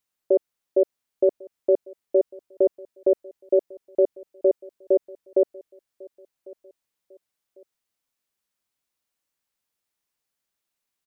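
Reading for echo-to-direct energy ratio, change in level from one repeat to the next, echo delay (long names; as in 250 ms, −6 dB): −23.0 dB, −8.5 dB, 1,099 ms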